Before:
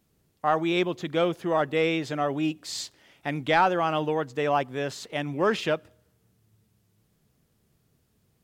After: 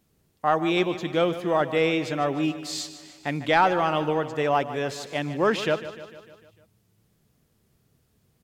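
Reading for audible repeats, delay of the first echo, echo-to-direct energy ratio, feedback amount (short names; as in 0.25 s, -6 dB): 5, 0.15 s, -11.5 dB, 58%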